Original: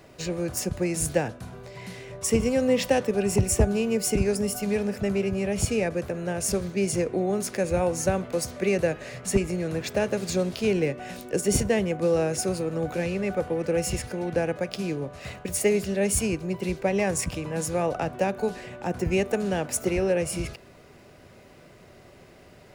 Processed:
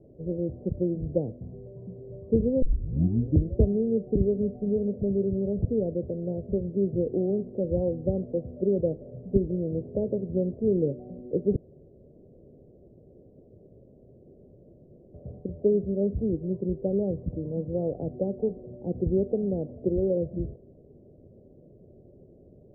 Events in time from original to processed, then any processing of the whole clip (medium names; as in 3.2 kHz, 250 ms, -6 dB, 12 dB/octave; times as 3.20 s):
2.62 s: tape start 0.96 s
11.56–15.14 s: room tone
whole clip: steep low-pass 540 Hz 36 dB/octave